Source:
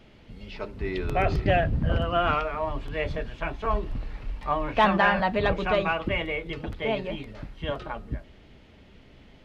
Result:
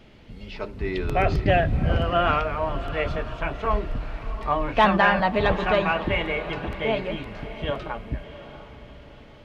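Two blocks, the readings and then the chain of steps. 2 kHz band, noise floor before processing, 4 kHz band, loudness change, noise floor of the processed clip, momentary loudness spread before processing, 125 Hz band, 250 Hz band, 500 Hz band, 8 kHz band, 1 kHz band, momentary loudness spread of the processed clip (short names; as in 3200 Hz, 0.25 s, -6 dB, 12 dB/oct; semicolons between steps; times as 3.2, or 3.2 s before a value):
+2.5 dB, -53 dBFS, +2.5 dB, +2.5 dB, -47 dBFS, 15 LU, +3.0 dB, +2.5 dB, +3.0 dB, n/a, +3.0 dB, 16 LU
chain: diffused feedback echo 0.696 s, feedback 42%, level -13 dB; gain +2.5 dB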